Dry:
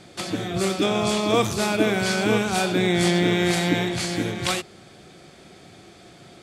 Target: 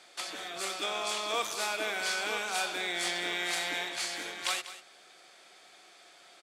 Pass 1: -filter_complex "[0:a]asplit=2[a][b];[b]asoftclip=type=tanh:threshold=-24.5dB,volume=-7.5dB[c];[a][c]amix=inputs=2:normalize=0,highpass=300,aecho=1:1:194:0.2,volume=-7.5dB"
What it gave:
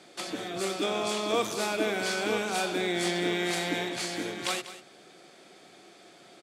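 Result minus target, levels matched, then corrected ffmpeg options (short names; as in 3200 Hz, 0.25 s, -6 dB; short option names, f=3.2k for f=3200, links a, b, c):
250 Hz band +11.5 dB
-filter_complex "[0:a]asplit=2[a][b];[b]asoftclip=type=tanh:threshold=-24.5dB,volume=-7.5dB[c];[a][c]amix=inputs=2:normalize=0,highpass=810,aecho=1:1:194:0.2,volume=-7.5dB"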